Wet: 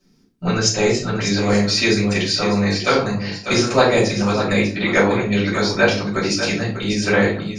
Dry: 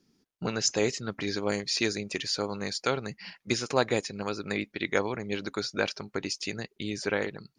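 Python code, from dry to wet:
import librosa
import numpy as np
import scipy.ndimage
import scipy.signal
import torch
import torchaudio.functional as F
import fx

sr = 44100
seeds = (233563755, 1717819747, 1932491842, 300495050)

p1 = fx.lowpass(x, sr, hz=5300.0, slope=12, at=(2.31, 2.82))
p2 = fx.rider(p1, sr, range_db=10, speed_s=2.0)
p3 = p1 + F.gain(torch.from_numpy(p2), 1.0).numpy()
p4 = p3 + 10.0 ** (-9.0 / 20.0) * np.pad(p3, (int(596 * sr / 1000.0), 0))[:len(p3)]
p5 = fx.room_shoebox(p4, sr, seeds[0], volume_m3=250.0, walls='furnished', distance_m=6.1)
y = F.gain(torch.from_numpy(p5), -5.5).numpy()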